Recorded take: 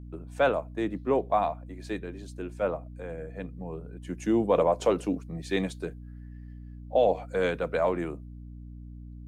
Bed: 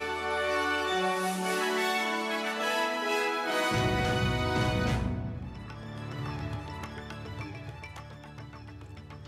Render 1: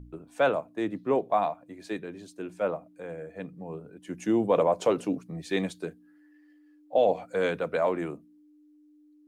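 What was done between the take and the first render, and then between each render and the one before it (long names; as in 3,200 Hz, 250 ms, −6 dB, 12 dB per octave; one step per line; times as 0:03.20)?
hum removal 60 Hz, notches 4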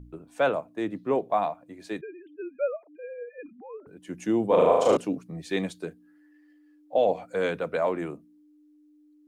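0:02.01–0:03.87: three sine waves on the formant tracks
0:04.47–0:04.97: flutter between parallel walls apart 6.4 metres, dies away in 1.1 s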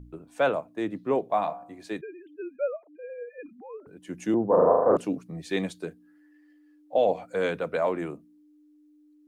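0:01.29–0:01.84: hum removal 64.54 Hz, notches 27
0:02.56–0:03.10: high-frequency loss of the air 300 metres
0:04.34–0:04.97: Butterworth low-pass 1,800 Hz 96 dB per octave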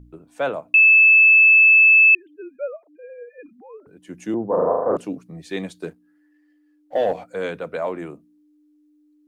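0:00.74–0:02.15: beep over 2,620 Hz −8.5 dBFS
0:05.81–0:07.24: leveller curve on the samples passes 1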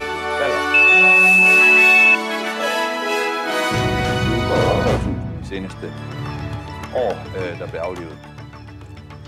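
mix in bed +8.5 dB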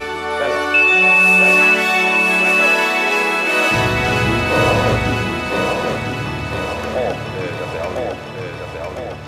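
on a send: feedback echo with a high-pass in the loop 1,004 ms, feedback 59%, high-pass 210 Hz, level −3 dB
on the sum: spring reverb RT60 3.5 s, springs 54 ms, chirp 50 ms, DRR 11.5 dB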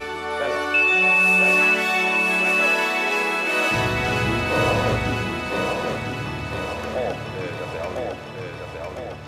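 level −5.5 dB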